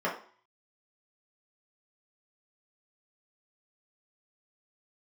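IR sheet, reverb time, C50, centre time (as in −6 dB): 0.45 s, 8.0 dB, 25 ms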